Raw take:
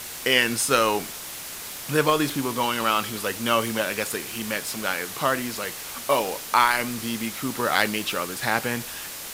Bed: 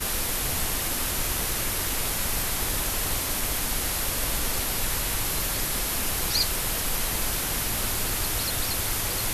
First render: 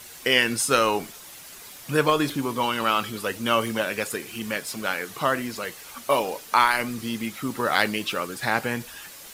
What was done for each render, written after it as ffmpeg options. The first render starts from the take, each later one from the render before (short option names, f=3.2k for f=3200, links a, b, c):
-af "afftdn=nr=9:nf=-36"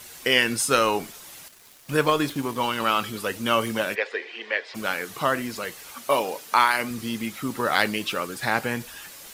-filter_complex "[0:a]asettb=1/sr,asplit=3[a][b][c];[a]atrim=end=1.484[d];[b]atrim=start=1.48:end=2.8,asetpts=PTS-STARTPTS,afade=t=in:d=0.004:c=qsin,afade=t=out:st=1.316:d=0.004:c=qsin,aeval=exprs='sgn(val(0))*max(abs(val(0))-0.00708,0)':c=same[e];[c]atrim=start=2.796[f];[d][e]acrossfade=d=0.004:c1=hsin:c2=qsin[g];[g][f]acrossfade=d=0.004:c1=qsin:c2=hsin,asplit=3[h][i][j];[h]afade=t=out:st=3.94:d=0.02[k];[i]highpass=f=400:w=0.5412,highpass=f=400:w=1.3066,equalizer=f=460:t=q:w=4:g=4,equalizer=f=1.3k:t=q:w=4:g=-6,equalizer=f=1.9k:t=q:w=4:g=9,lowpass=f=4k:w=0.5412,lowpass=f=4k:w=1.3066,afade=t=in:st=3.94:d=0.02,afade=t=out:st=4.74:d=0.02[l];[j]afade=t=in:st=4.74:d=0.02[m];[k][l][m]amix=inputs=3:normalize=0,asettb=1/sr,asplit=3[n][o][p];[n]atrim=end=5.914[q];[o]atrim=start=5.91:end=6.91,asetpts=PTS-STARTPTS,afade=t=in:d=0.004:c=qsin,afade=t=out:st=0.996:d=0.004:c=qsin,highpass=f=130:p=1[r];[p]atrim=start=6.906[s];[q][r]acrossfade=d=0.004:c1=hsin:c2=qsin[t];[t][s]acrossfade=d=0.004:c1=qsin:c2=hsin"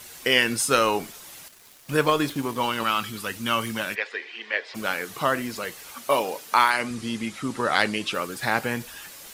-filter_complex "[0:a]asettb=1/sr,asplit=3[a][b][c];[a]atrim=end=2.834[d];[b]atrim=start=2.83:end=4.54,asetpts=PTS-STARTPTS,afade=t=in:d=0.004:c=qsin,afade=t=out:st=1.706:d=0.004:c=qsin,equalizer=f=500:t=o:w=1.3:g=-8[e];[c]atrim=start=4.536[f];[d][e]acrossfade=d=0.004:c1=hsin:c2=qsin[g];[g][f]acrossfade=d=0.004:c1=qsin:c2=hsin,asettb=1/sr,asplit=3[h][i][j];[h]atrim=end=6.704[k];[i]atrim=start=6.7:end=8.14,asetpts=PTS-STARTPTS,afade=t=in:d=0.004:c=qsin,afade=t=out:st=1.436:d=0.004:c=qsin,lowpass=f=10k:w=0.5412,lowpass=f=10k:w=1.3066[l];[j]atrim=start=8.136[m];[k][l]acrossfade=d=0.004:c1=hsin:c2=qsin[n];[n][m]acrossfade=d=0.004:c1=qsin:c2=hsin"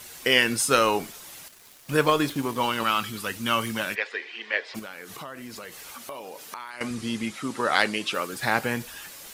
-filter_complex "[0:a]asettb=1/sr,asplit=3[a][b][c];[a]atrim=end=4.794[d];[b]atrim=start=4.79:end=6.81,asetpts=PTS-STARTPTS,afade=t=in:d=0.004:c=qsin,afade=t=out:st=2.016:d=0.004:c=qsin,acompressor=threshold=-36dB:ratio=5:attack=3.2:release=140:knee=1:detection=peak[e];[c]atrim=start=6.806[f];[d][e]acrossfade=d=0.004:c1=hsin:c2=qsin[g];[g][f]acrossfade=d=0.004:c1=qsin:c2=hsin,asettb=1/sr,asplit=3[h][i][j];[h]atrim=end=7.314[k];[i]atrim=start=7.31:end=8.33,asetpts=PTS-STARTPTS,afade=t=in:d=0.004:c=qsin,afade=t=out:st=1.016:d=0.004:c=qsin,highpass=f=200:p=1[l];[j]atrim=start=8.326[m];[k][l]acrossfade=d=0.004:c1=hsin:c2=qsin[n];[n][m]acrossfade=d=0.004:c1=qsin:c2=hsin"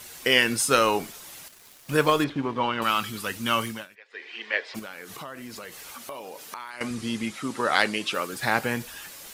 -filter_complex "[0:a]asettb=1/sr,asplit=3[a][b][c];[a]atrim=end=2.244[d];[b]atrim=start=2.24:end=2.82,asetpts=PTS-STARTPTS,afade=t=in:d=0.004:c=qsin,afade=t=out:st=0.576:d=0.004:c=qsin,lowpass=2.8k[e];[c]atrim=start=2.816[f];[d][e]acrossfade=d=0.004:c1=hsin:c2=qsin[g];[g][f]acrossfade=d=0.004:c1=qsin:c2=hsin,asplit=3[h][i][j];[h]atrim=end=3.88,asetpts=PTS-STARTPTS,afade=t=out:st=3.62:d=0.26:silence=0.0749894[k];[i]atrim=start=3.88:end=4.08,asetpts=PTS-STARTPTS,volume=-22.5dB[l];[j]atrim=start=4.08,asetpts=PTS-STARTPTS,afade=t=in:d=0.26:silence=0.0749894[m];[k][l][m]concat=n=3:v=0:a=1"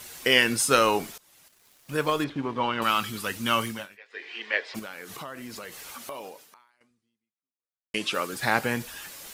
-filter_complex "[0:a]asettb=1/sr,asplit=3[a][b][c];[a]atrim=end=3.774[d];[b]atrim=start=3.77:end=4.4,asetpts=PTS-STARTPTS,afade=t=in:d=0.004:c=qsin,afade=t=out:st=0.626:d=0.004:c=qsin,asplit=2[e][f];[f]adelay=20,volume=-6.5dB[g];[e][g]amix=inputs=2:normalize=0,atrim=end_sample=27783[h];[c]atrim=start=4.396[i];[d][h]acrossfade=d=0.004:c1=hsin:c2=qsin[j];[j][i]acrossfade=d=0.004:c1=qsin:c2=hsin,asplit=3[k][l][m];[k]atrim=end=1.18,asetpts=PTS-STARTPTS,afade=t=out:st=1.176:d=0.004:c=hsin:silence=0.105925[n];[l]atrim=start=1.18:end=7.94,asetpts=PTS-STARTPTS,afade=t=in:d=1.67:silence=0.105925,afade=t=out:st=5.08:d=1.68:c=exp[o];[m]atrim=start=7.94,asetpts=PTS-STARTPTS,afade=t=in:d=0.004:c=hsin[p];[n][o][p]concat=n=3:v=0:a=1"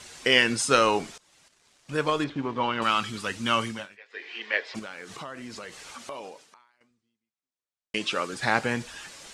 -af "lowpass=f=8.4k:w=0.5412,lowpass=f=8.4k:w=1.3066"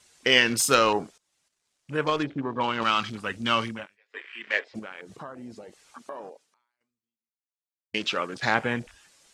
-af "afwtdn=0.0126,highshelf=f=6.5k:g=7.5"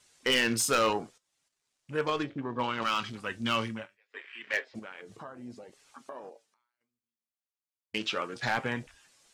-af "flanger=delay=7.2:depth=1.9:regen=69:speed=0.68:shape=sinusoidal,asoftclip=type=hard:threshold=-19.5dB"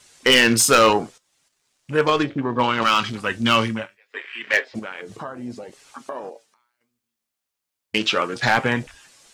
-af "volume=11.5dB"